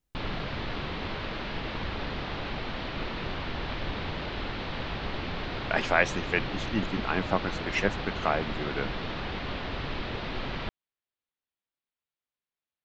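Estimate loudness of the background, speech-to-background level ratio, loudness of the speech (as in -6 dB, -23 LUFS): -34.5 LUFS, 4.5 dB, -30.0 LUFS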